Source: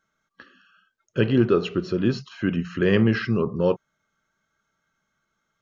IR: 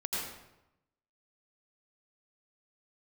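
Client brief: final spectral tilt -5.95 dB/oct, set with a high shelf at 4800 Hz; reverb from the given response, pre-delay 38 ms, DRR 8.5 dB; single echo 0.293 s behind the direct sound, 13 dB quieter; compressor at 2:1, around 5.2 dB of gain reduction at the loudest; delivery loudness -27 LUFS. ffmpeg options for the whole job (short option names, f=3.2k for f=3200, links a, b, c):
-filter_complex "[0:a]highshelf=f=4.8k:g=4.5,acompressor=threshold=-23dB:ratio=2,aecho=1:1:293:0.224,asplit=2[a][b];[1:a]atrim=start_sample=2205,adelay=38[c];[b][c]afir=irnorm=-1:irlink=0,volume=-13.5dB[d];[a][d]amix=inputs=2:normalize=0,volume=-0.5dB"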